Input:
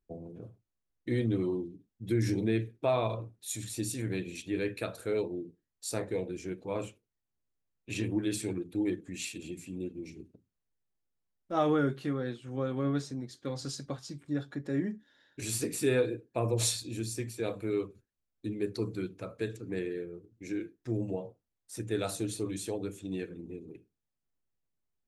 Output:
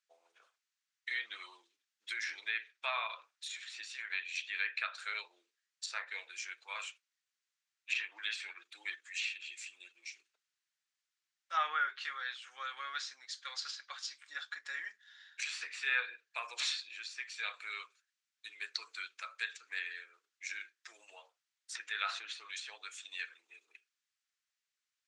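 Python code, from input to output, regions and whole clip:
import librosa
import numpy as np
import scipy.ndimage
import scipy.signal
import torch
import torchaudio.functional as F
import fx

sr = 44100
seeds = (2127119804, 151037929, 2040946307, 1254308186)

y = fx.chain(x, sr, fx.lowpass(hz=3300.0, slope=6),
    fx.peak_eq(hz=590.0, db=-4.5, octaves=0.24),
    fx.env_flatten(amount_pct=50), at=(21.75, 22.33))
y = scipy.signal.sosfilt(scipy.signal.butter(4, 1400.0, 'highpass', fs=sr, output='sos'), y)
y = fx.env_lowpass_down(y, sr, base_hz=2500.0, full_db=-40.0)
y = scipy.signal.sosfilt(scipy.signal.butter(4, 7600.0, 'lowpass', fs=sr, output='sos'), y)
y = F.gain(torch.from_numpy(y), 9.0).numpy()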